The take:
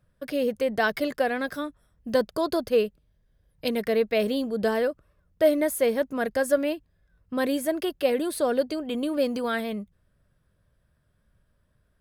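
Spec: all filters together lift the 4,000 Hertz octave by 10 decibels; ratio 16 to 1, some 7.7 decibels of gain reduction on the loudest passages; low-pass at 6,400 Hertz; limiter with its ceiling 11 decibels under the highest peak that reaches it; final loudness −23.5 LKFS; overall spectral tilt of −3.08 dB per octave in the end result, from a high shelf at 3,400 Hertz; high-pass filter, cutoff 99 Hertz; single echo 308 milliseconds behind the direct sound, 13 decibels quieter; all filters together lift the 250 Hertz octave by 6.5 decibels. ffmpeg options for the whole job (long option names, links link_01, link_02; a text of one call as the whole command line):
ffmpeg -i in.wav -af "highpass=99,lowpass=6400,equalizer=frequency=250:width_type=o:gain=7.5,highshelf=frequency=3400:gain=8.5,equalizer=frequency=4000:width_type=o:gain=7.5,acompressor=threshold=-21dB:ratio=16,alimiter=limit=-19.5dB:level=0:latency=1,aecho=1:1:308:0.224,volume=5.5dB" out.wav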